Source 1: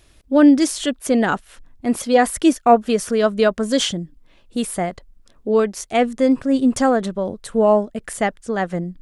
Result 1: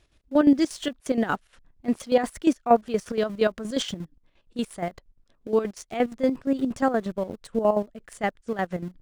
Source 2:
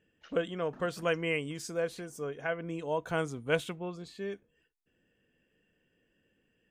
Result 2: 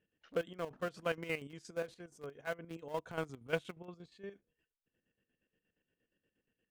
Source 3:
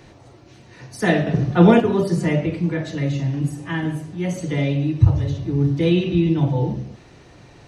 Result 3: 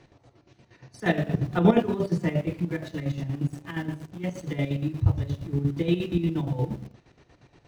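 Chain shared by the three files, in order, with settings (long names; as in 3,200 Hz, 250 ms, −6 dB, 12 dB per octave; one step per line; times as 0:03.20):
high-frequency loss of the air 51 metres
in parallel at −6.5 dB: centre clipping without the shift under −29.5 dBFS
on the sum: square-wave tremolo 8.5 Hz, depth 65%, duty 50%
level −8 dB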